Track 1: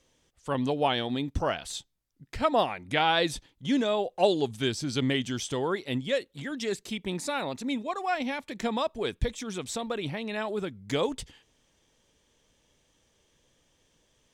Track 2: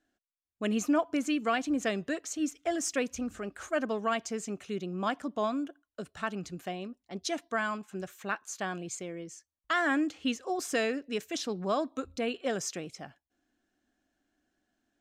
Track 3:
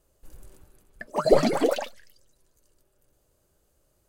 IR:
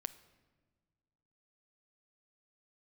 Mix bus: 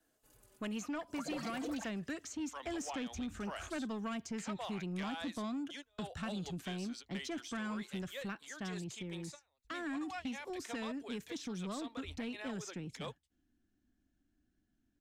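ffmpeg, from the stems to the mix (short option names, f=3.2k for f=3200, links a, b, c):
-filter_complex "[0:a]highpass=f=560:w=0.5412,highpass=f=560:w=1.3066,adelay=2050,volume=-8dB[a];[1:a]volume=-1dB,afade=t=out:st=8.09:d=0.4:silence=0.421697,asplit=2[b][c];[2:a]highpass=f=450:p=1,asplit=2[d][e];[e]adelay=4.1,afreqshift=-0.52[f];[d][f]amix=inputs=2:normalize=1,volume=-4.5dB[g];[c]apad=whole_len=722768[h];[a][h]sidechaingate=range=-36dB:threshold=-53dB:ratio=16:detection=peak[i];[i][b][g]amix=inputs=3:normalize=0,asubboost=boost=7.5:cutoff=220,acrossover=split=300|750|2000|6800[j][k][l][m][n];[j]acompressor=threshold=-42dB:ratio=4[o];[k]acompressor=threshold=-45dB:ratio=4[p];[l]acompressor=threshold=-44dB:ratio=4[q];[m]acompressor=threshold=-48dB:ratio=4[r];[n]acompressor=threshold=-59dB:ratio=4[s];[o][p][q][r][s]amix=inputs=5:normalize=0,asoftclip=type=tanh:threshold=-33dB"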